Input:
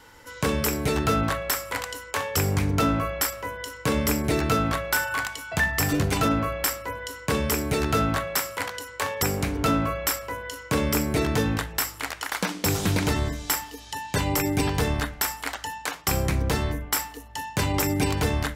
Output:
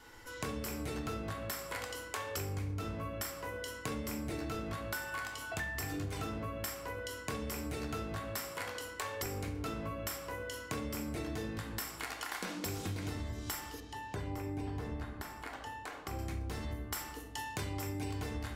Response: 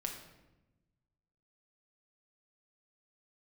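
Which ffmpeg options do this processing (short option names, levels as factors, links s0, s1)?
-filter_complex "[1:a]atrim=start_sample=2205,asetrate=83790,aresample=44100[s0];[0:a][s0]afir=irnorm=-1:irlink=0,acompressor=threshold=0.0126:ratio=5,asettb=1/sr,asplit=3[s1][s2][s3];[s1]atrim=end=13.804[s4];[s2]atrim=start=13.8:end=16.19,asetpts=PTS-STARTPTS,afade=t=in:d=0.004:c=qsin,afade=t=out:st=2.386:d=0.004:c=qsin,highshelf=f=2400:g=-12[s5];[s3]atrim=start=16.186[s6];[s4][s5]acrossfade=d=0.004:c1=hsin:c2=qsin[s7];[s7][s6]acrossfade=d=0.004:c1=qsin:c2=hsin,volume=1.12"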